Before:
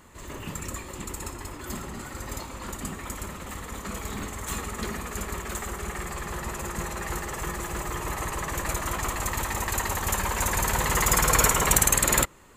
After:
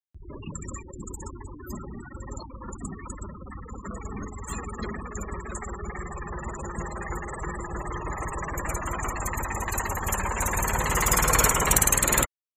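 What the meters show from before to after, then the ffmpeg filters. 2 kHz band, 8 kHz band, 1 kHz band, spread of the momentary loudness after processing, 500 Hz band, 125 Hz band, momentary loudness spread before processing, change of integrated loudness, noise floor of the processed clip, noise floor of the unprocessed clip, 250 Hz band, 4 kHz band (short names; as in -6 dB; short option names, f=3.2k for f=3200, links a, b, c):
-1.0 dB, -1.0 dB, -0.5 dB, 20 LU, -0.5 dB, 0.0 dB, 17 LU, +0.5 dB, -44 dBFS, -41 dBFS, -0.5 dB, -3.5 dB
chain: -af "afftfilt=real='re*gte(hypot(re,im),0.0316)':imag='im*gte(hypot(re,im),0.0316)':win_size=1024:overlap=0.75,acompressor=mode=upward:threshold=-41dB:ratio=2.5"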